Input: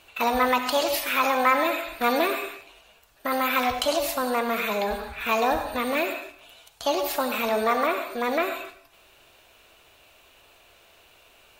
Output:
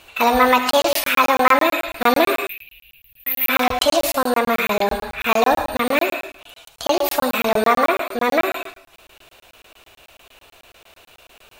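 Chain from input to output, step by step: 2.47–3.49 s: FFT filter 140 Hz 0 dB, 260 Hz -18 dB, 1.3 kHz -27 dB, 2.5 kHz +4 dB, 8.4 kHz -28 dB, 12 kHz +12 dB; crackling interface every 0.11 s, samples 1024, zero, from 0.71 s; trim +7.5 dB

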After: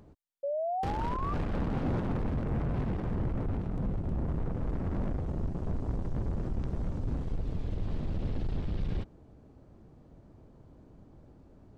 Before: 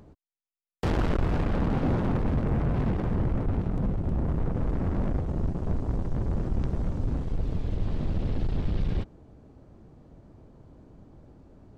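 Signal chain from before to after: painted sound rise, 0.43–1.34 s, 550–1200 Hz -28 dBFS; peak limiter -21.5 dBFS, peak gain reduction 8 dB; trim -3.5 dB

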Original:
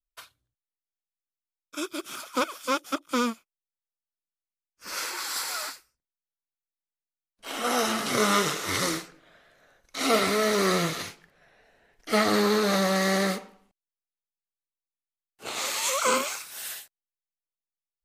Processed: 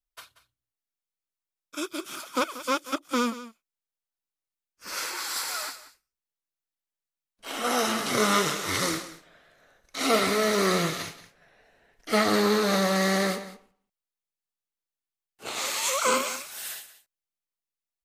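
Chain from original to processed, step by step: delay 184 ms -15.5 dB

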